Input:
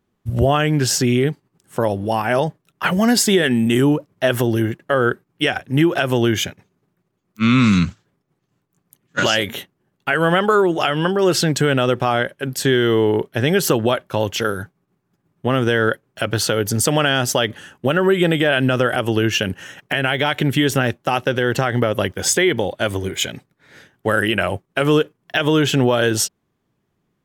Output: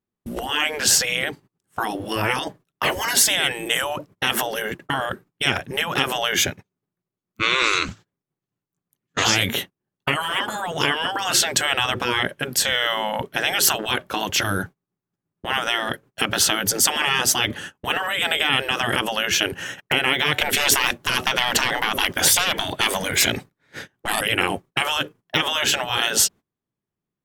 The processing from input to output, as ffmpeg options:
-filter_complex "[0:a]asettb=1/sr,asplit=3[s0][s1][s2];[s0]atrim=end=20.414[s3];[s1]atrim=start=20.41:end=24.21,asetpts=PTS-STARTPTS,afade=t=in:d=0.004:c=qsin,afade=t=out:st=3.796:d=0.004:c=qsin,acontrast=57[s4];[s2]atrim=start=24.206[s5];[s3][s4]acrossfade=d=0.004:c1=hsin:c2=qsin[s6];[s6][s5]acrossfade=d=0.004:c1=qsin:c2=hsin,agate=range=0.0794:threshold=0.0126:ratio=16:detection=peak,afftfilt=real='re*lt(hypot(re,im),0.282)':imag='im*lt(hypot(re,im),0.282)':win_size=1024:overlap=0.75,volume=1.88"

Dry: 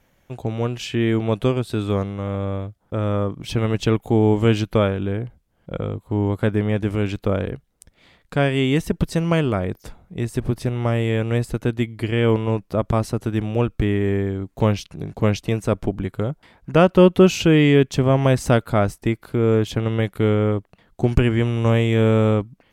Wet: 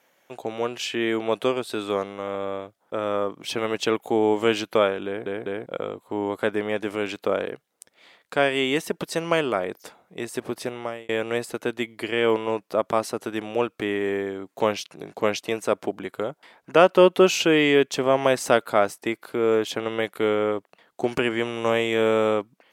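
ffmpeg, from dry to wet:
-filter_complex "[0:a]asplit=5[s0][s1][s2][s3][s4];[s0]atrim=end=5.262[s5];[s1]atrim=start=5.058:end=5.262[s6];[s2]atrim=start=5.058:end=5.262[s7];[s3]atrim=start=5.658:end=11.09,asetpts=PTS-STARTPTS,afade=t=out:st=5.002:d=0.43[s8];[s4]atrim=start=11.09,asetpts=PTS-STARTPTS,afade=t=in:d=0.004:c=hsin[s9];[s5][s6]acrossfade=d=0.004:c1=hsin:c2=hsin[s10];[s10][s7]acrossfade=d=0.004:c1=hsin:c2=hsin[s11];[s8][s9]concat=n=2:v=0:a=1[s12];[s11][s12]acrossfade=d=0.004:c1=hsin:c2=hsin,highpass=420,volume=1.19"

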